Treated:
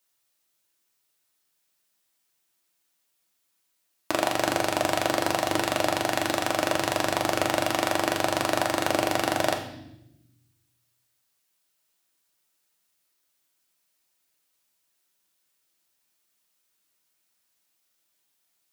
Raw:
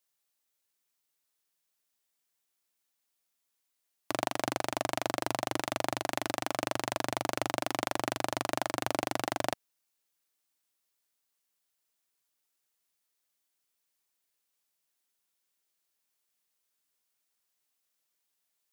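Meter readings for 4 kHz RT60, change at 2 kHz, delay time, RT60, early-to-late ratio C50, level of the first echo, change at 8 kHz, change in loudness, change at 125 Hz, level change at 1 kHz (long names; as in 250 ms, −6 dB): 0.85 s, +8.5 dB, no echo audible, 0.85 s, 8.5 dB, no echo audible, +7.0 dB, +7.5 dB, +7.0 dB, +7.0 dB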